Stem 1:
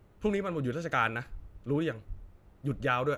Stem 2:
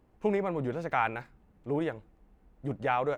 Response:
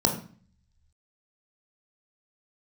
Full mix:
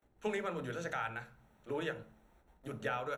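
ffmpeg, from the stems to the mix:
-filter_complex "[0:a]agate=range=-17dB:threshold=-56dB:ratio=16:detection=peak,highpass=780,alimiter=level_in=2.5dB:limit=-24dB:level=0:latency=1:release=470,volume=-2.5dB,volume=-2dB,asplit=2[link_01][link_02];[link_02]volume=-15dB[link_03];[1:a]acrossover=split=170[link_04][link_05];[link_05]acompressor=threshold=-39dB:ratio=6[link_06];[link_04][link_06]amix=inputs=2:normalize=0,adelay=23,volume=-11.5dB,asplit=2[link_07][link_08];[link_08]volume=-21.5dB[link_09];[2:a]atrim=start_sample=2205[link_10];[link_03][link_09]amix=inputs=2:normalize=0[link_11];[link_11][link_10]afir=irnorm=-1:irlink=0[link_12];[link_01][link_07][link_12]amix=inputs=3:normalize=0,lowshelf=frequency=110:gain=8"

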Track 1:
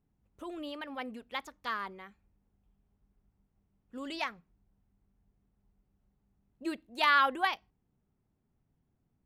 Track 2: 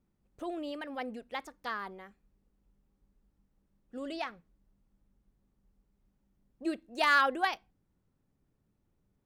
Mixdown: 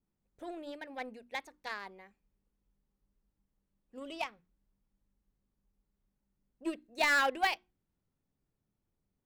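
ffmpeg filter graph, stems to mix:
ffmpeg -i stem1.wav -i stem2.wav -filter_complex "[0:a]highpass=640,volume=-7.5dB[link_01];[1:a]bandreject=frequency=60:width_type=h:width=6,bandreject=frequency=120:width_type=h:width=6,bandreject=frequency=180:width_type=h:width=6,bandreject=frequency=240:width_type=h:width=6,bandreject=frequency=300:width_type=h:width=6,bandreject=frequency=360:width_type=h:width=6,adynamicequalizer=threshold=0.00794:dfrequency=2900:dqfactor=0.83:tfrequency=2900:tqfactor=0.83:attack=5:release=100:ratio=0.375:range=3:mode=boostabove:tftype=bell,volume=-2.5dB[link_02];[link_01][link_02]amix=inputs=2:normalize=0,aeval=exprs='0.0841*(cos(1*acos(clip(val(0)/0.0841,-1,1)))-cos(1*PI/2))+0.00531*(cos(7*acos(clip(val(0)/0.0841,-1,1)))-cos(7*PI/2))':channel_layout=same" out.wav

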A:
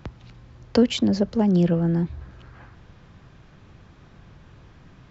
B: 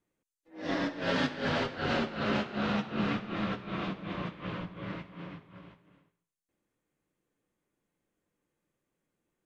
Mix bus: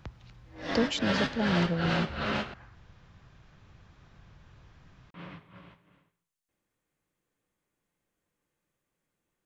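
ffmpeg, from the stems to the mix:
ffmpeg -i stem1.wav -i stem2.wav -filter_complex "[0:a]volume=-5dB[link_01];[1:a]volume=2dB,asplit=3[link_02][link_03][link_04];[link_02]atrim=end=2.54,asetpts=PTS-STARTPTS,afade=type=out:start_time=2.536:duration=0.004:curve=hsin[link_05];[link_03]atrim=start=2.54:end=5.14,asetpts=PTS-STARTPTS,volume=0[link_06];[link_04]atrim=start=5.14,asetpts=PTS-STARTPTS,afade=type=in:duration=0.004:curve=hsin[link_07];[link_05][link_06][link_07]concat=n=3:v=0:a=1[link_08];[link_01][link_08]amix=inputs=2:normalize=0,equalizer=frequency=300:width_type=o:width=1.9:gain=-6" out.wav

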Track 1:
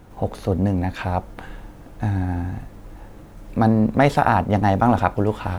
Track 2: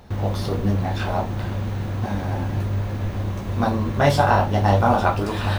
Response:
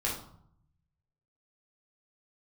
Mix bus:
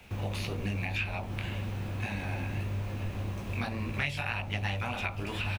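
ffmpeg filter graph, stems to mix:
-filter_complex "[0:a]flanger=delay=15.5:depth=6.5:speed=1.8,highpass=frequency=2500:width_type=q:width=5.8,volume=2.5dB[link_01];[1:a]acompressor=threshold=-19dB:ratio=6,adelay=2.9,volume=-9dB[link_02];[link_01][link_02]amix=inputs=2:normalize=0,acrossover=split=180[link_03][link_04];[link_04]acompressor=threshold=-35dB:ratio=2.5[link_05];[link_03][link_05]amix=inputs=2:normalize=0"

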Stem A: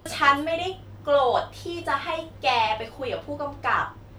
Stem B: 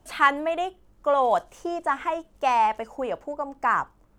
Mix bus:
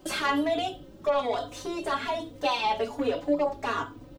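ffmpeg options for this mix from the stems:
ffmpeg -i stem1.wav -i stem2.wav -filter_complex "[0:a]equalizer=frequency=125:width_type=o:width=1:gain=-6,equalizer=frequency=250:width_type=o:width=1:gain=10,equalizer=frequency=500:width_type=o:width=1:gain=5,equalizer=frequency=1000:width_type=o:width=1:gain=-8,equalizer=frequency=2000:width_type=o:width=1:gain=-5,equalizer=frequency=4000:width_type=o:width=1:gain=4,alimiter=limit=-17dB:level=0:latency=1,volume=-1dB[link_01];[1:a]acompressor=threshold=-28dB:ratio=6,asplit=2[link_02][link_03];[link_03]highpass=frequency=720:poles=1,volume=20dB,asoftclip=type=tanh:threshold=-16dB[link_04];[link_02][link_04]amix=inputs=2:normalize=0,lowpass=frequency=8000:poles=1,volume=-6dB,volume=-5dB[link_05];[link_01][link_05]amix=inputs=2:normalize=0,aecho=1:1:7.1:0.45,asplit=2[link_06][link_07];[link_07]adelay=3.4,afreqshift=1.2[link_08];[link_06][link_08]amix=inputs=2:normalize=1" out.wav

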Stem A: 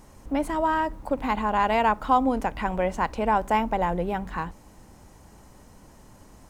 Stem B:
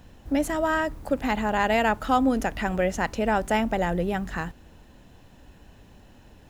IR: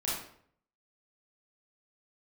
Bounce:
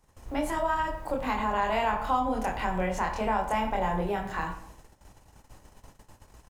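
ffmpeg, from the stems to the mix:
-filter_complex "[0:a]equalizer=frequency=220:width_type=o:width=1:gain=-14.5,volume=-3.5dB,asplit=2[link_01][link_02];[link_02]volume=-6dB[link_03];[1:a]volume=-1,adelay=25,volume=-6dB,asplit=2[link_04][link_05];[link_05]volume=-18dB[link_06];[2:a]atrim=start_sample=2205[link_07];[link_03][link_06]amix=inputs=2:normalize=0[link_08];[link_08][link_07]afir=irnorm=-1:irlink=0[link_09];[link_01][link_04][link_09]amix=inputs=3:normalize=0,agate=range=-15dB:threshold=-48dB:ratio=16:detection=peak,acrossover=split=150[link_10][link_11];[link_11]acompressor=threshold=-28dB:ratio=2[link_12];[link_10][link_12]amix=inputs=2:normalize=0"

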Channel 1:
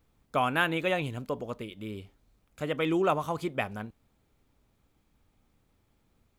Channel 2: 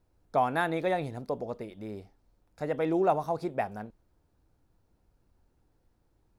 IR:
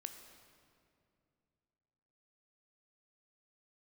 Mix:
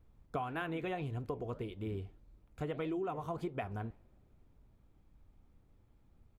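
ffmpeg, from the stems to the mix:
-filter_complex "[0:a]flanger=delay=2.9:depth=9.1:regen=-82:speed=1.7:shape=sinusoidal,lowshelf=frequency=130:gain=10.5,volume=1.5dB,asplit=2[link_01][link_02];[link_02]volume=-23.5dB[link_03];[1:a]lowpass=frequency=1300:width=0.5412,lowpass=frequency=1300:width=1.3066,adelay=2.8,volume=-7dB[link_04];[2:a]atrim=start_sample=2205[link_05];[link_03][link_05]afir=irnorm=-1:irlink=0[link_06];[link_01][link_04][link_06]amix=inputs=3:normalize=0,highshelf=frequency=2400:gain=-9,acompressor=threshold=-34dB:ratio=12"

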